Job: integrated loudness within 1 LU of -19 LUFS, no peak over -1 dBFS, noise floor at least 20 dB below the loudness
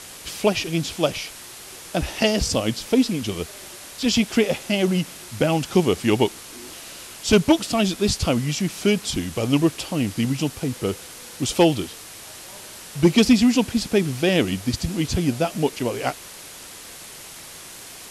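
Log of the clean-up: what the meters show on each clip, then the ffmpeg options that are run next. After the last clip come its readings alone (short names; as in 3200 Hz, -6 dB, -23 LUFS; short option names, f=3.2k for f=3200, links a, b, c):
noise floor -40 dBFS; noise floor target -42 dBFS; loudness -22.0 LUFS; peak -5.5 dBFS; loudness target -19.0 LUFS
-> -af "afftdn=nr=6:nf=-40"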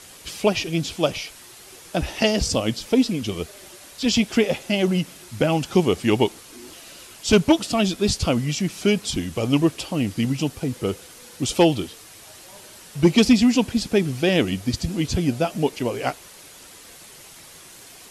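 noise floor -45 dBFS; loudness -22.0 LUFS; peak -5.5 dBFS; loudness target -19.0 LUFS
-> -af "volume=3dB"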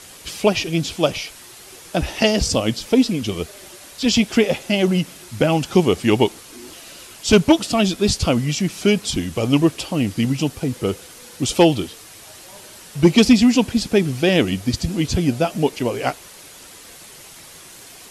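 loudness -19.0 LUFS; peak -2.5 dBFS; noise floor -42 dBFS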